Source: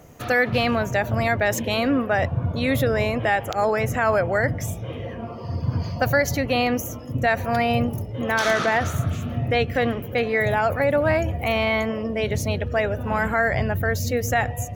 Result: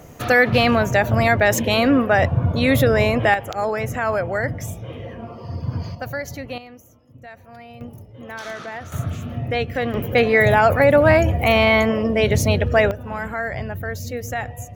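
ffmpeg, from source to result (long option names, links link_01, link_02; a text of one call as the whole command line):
ffmpeg -i in.wav -af "asetnsamples=nb_out_samples=441:pad=0,asendcmd='3.34 volume volume -1.5dB;5.95 volume volume -8.5dB;6.58 volume volume -20dB;7.81 volume volume -11.5dB;8.92 volume volume -1.5dB;9.94 volume volume 6.5dB;12.91 volume volume -5dB',volume=5dB" out.wav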